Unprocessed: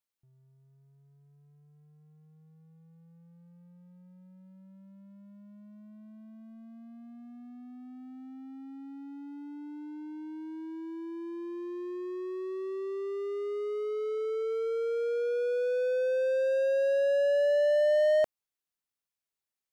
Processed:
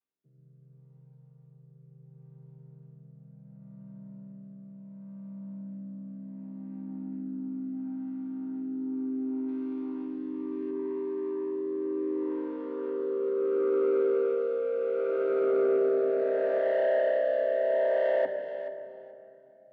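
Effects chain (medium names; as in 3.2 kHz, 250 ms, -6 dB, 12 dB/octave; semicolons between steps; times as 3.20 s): vocoder on a held chord minor triad, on C3; 9.48–10.71 s: treble shelf 2.5 kHz +12 dB; in parallel at +2 dB: peak limiter -26.5 dBFS, peak gain reduction 9.5 dB; on the sum: rotary cabinet horn 0.7 Hz; saturation -21 dBFS, distortion -17 dB; band-pass 200–3800 Hz; thinning echo 429 ms, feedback 17%, high-pass 1 kHz, level -10 dB; on a send at -6 dB: reverberation RT60 3.2 s, pre-delay 3 ms; on the sum: trim +1.5 dB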